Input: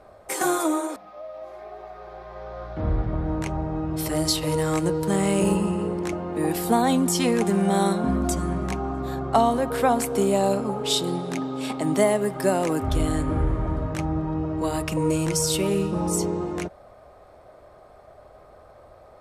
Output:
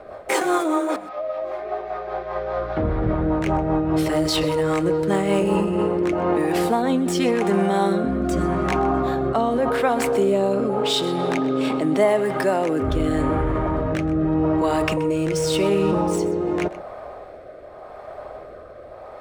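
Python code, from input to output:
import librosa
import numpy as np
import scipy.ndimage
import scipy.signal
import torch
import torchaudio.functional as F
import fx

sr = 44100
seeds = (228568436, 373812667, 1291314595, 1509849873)

p1 = scipy.signal.medfilt(x, 3)
p2 = fx.bass_treble(p1, sr, bass_db=-9, treble_db=-10)
p3 = fx.over_compress(p2, sr, threshold_db=-33.0, ratio=-1.0)
p4 = p2 + (p3 * librosa.db_to_amplitude(2.0))
p5 = fx.rotary_switch(p4, sr, hz=5.0, then_hz=0.85, switch_at_s=5.36)
p6 = p5 + 10.0 ** (-17.0 / 20.0) * np.pad(p5, (int(127 * sr / 1000.0), 0))[:len(p5)]
y = p6 * librosa.db_to_amplitude(4.0)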